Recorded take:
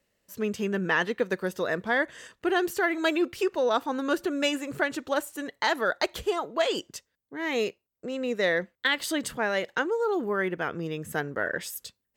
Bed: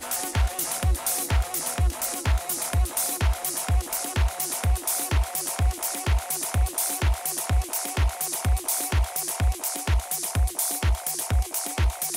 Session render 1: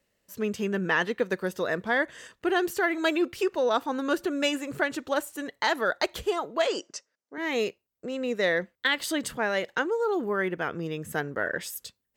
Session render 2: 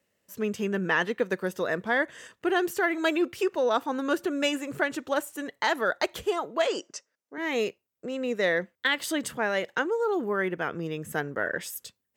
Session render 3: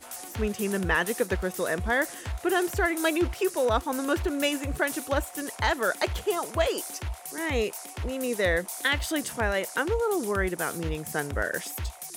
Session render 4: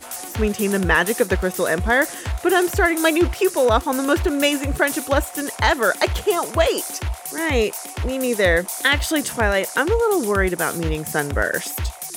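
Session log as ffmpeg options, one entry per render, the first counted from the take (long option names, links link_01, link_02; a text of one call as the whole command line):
ffmpeg -i in.wav -filter_complex "[0:a]asettb=1/sr,asplit=3[link_01][link_02][link_03];[link_01]atrim=end=6.674[link_04];[link_02]atrim=start=6.67:end=7.38,asetpts=PTS-STARTPTS,afade=type=in:duration=0.004:curve=qsin,afade=type=out:start_time=0.706:duration=0.004:curve=qsin,highpass=280,equalizer=frequency=610:width_type=q:width=4:gain=5,equalizer=frequency=1300:width_type=q:width=4:gain=4,equalizer=frequency=3400:width_type=q:width=4:gain=-9,equalizer=frequency=5600:width_type=q:width=4:gain=7,lowpass=frequency=8000:width=0.5412,lowpass=frequency=8000:width=1.3066[link_05];[link_03]atrim=start=7.376[link_06];[link_04][link_05]acrossfade=duration=0.004:curve1=hsin:curve2=qsin[link_07];[link_07][link_06]acrossfade=duration=0.004:curve1=qsin:curve2=hsin" out.wav
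ffmpeg -i in.wav -af "highpass=85,equalizer=frequency=4300:width=3.1:gain=-3.5" out.wav
ffmpeg -i in.wav -i bed.wav -filter_complex "[1:a]volume=-11dB[link_01];[0:a][link_01]amix=inputs=2:normalize=0" out.wav
ffmpeg -i in.wav -af "volume=8dB,alimiter=limit=-3dB:level=0:latency=1" out.wav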